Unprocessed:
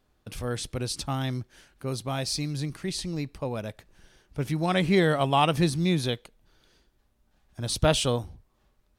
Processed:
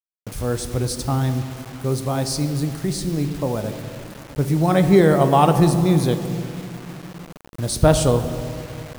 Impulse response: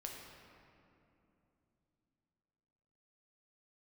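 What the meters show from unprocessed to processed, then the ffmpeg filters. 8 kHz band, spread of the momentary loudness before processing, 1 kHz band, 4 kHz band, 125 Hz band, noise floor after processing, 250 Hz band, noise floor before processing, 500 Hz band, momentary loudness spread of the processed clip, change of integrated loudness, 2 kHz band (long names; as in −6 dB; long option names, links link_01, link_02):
+6.5 dB, 14 LU, +7.0 dB, 0.0 dB, +9.5 dB, −44 dBFS, +9.0 dB, −69 dBFS, +9.0 dB, 19 LU, +7.5 dB, +2.0 dB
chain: -filter_complex "[0:a]equalizer=frequency=2900:width_type=o:width=1.5:gain=-12.5,asplit=2[link_01][link_02];[1:a]atrim=start_sample=2205[link_03];[link_02][link_03]afir=irnorm=-1:irlink=0,volume=1.5dB[link_04];[link_01][link_04]amix=inputs=2:normalize=0,acrusher=bits=6:mix=0:aa=0.000001,volume=4dB"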